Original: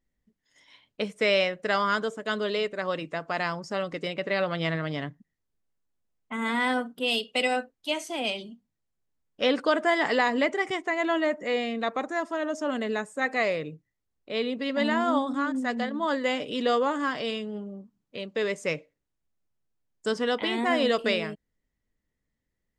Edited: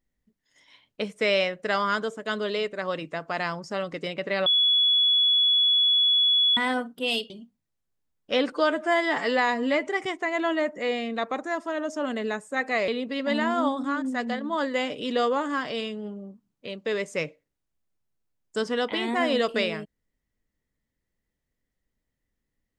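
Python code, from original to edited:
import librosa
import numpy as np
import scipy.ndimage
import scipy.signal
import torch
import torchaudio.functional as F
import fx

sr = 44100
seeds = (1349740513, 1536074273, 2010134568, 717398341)

y = fx.edit(x, sr, fx.bleep(start_s=4.46, length_s=2.11, hz=3390.0, db=-17.5),
    fx.cut(start_s=7.3, length_s=1.1),
    fx.stretch_span(start_s=9.62, length_s=0.9, factor=1.5),
    fx.cut(start_s=13.53, length_s=0.85), tone=tone)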